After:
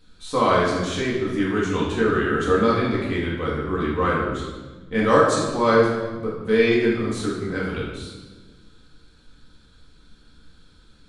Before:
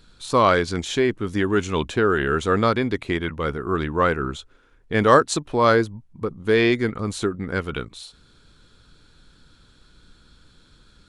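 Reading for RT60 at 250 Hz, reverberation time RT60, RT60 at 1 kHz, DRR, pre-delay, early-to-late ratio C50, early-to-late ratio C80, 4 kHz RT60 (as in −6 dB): 2.0 s, 1.3 s, 1.2 s, −6.0 dB, 4 ms, 1.0 dB, 4.0 dB, 1.1 s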